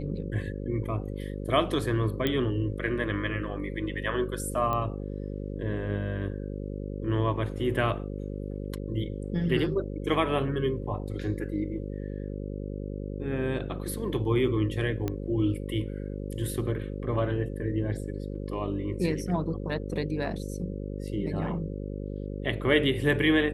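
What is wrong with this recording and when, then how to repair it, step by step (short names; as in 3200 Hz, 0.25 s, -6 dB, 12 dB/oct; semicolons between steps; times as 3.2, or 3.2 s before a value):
buzz 50 Hz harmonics 11 -35 dBFS
2.27 pop -14 dBFS
4.73 pop -18 dBFS
15.08 pop -17 dBFS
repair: de-click; de-hum 50 Hz, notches 11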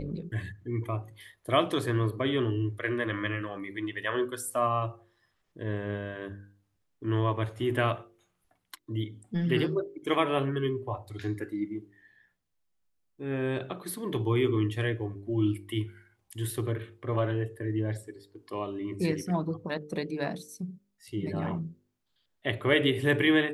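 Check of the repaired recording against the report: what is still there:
none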